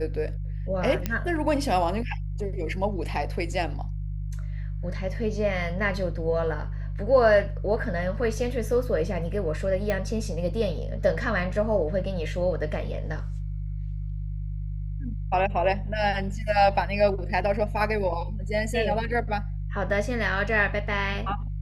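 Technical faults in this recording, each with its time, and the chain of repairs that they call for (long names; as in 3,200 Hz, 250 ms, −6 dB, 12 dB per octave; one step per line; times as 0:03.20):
mains hum 50 Hz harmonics 3 −31 dBFS
0:01.06: click −12 dBFS
0:09.90: click −14 dBFS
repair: click removal
hum removal 50 Hz, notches 3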